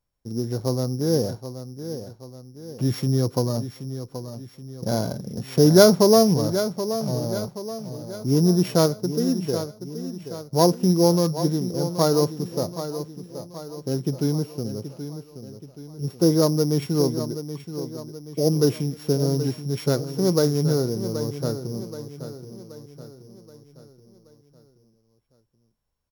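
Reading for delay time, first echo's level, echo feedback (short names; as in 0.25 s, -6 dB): 0.777 s, -11.0 dB, 48%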